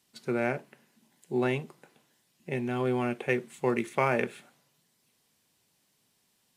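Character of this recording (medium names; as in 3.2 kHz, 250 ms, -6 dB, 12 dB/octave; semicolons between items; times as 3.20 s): noise floor -72 dBFS; spectral tilt -3.0 dB/octave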